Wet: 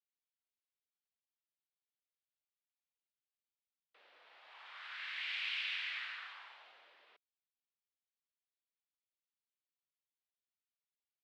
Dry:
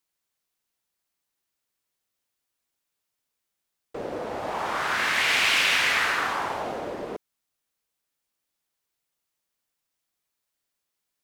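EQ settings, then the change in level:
four-pole ladder band-pass 5,000 Hz, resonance 20%
high-frequency loss of the air 470 metres
+6.5 dB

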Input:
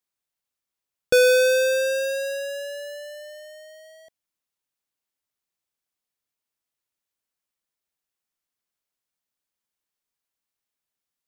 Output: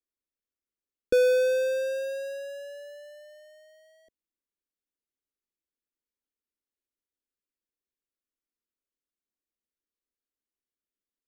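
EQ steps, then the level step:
tilt shelving filter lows +8 dB, about 1,400 Hz
phaser with its sweep stopped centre 330 Hz, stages 4
−7.0 dB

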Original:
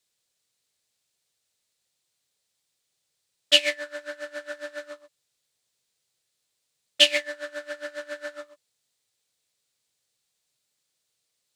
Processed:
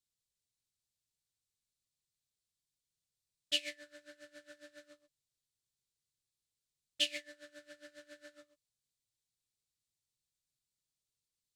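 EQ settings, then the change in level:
guitar amp tone stack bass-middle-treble 10-0-1
+7.5 dB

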